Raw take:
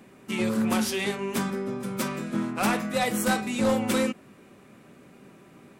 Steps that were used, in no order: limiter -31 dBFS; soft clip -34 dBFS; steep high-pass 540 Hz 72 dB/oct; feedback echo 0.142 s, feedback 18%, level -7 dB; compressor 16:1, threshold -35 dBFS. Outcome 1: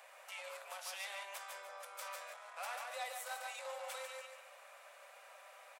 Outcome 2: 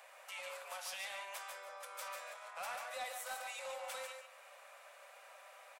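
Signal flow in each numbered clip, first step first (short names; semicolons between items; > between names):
feedback echo > compressor > limiter > soft clip > steep high-pass; compressor > feedback echo > limiter > steep high-pass > soft clip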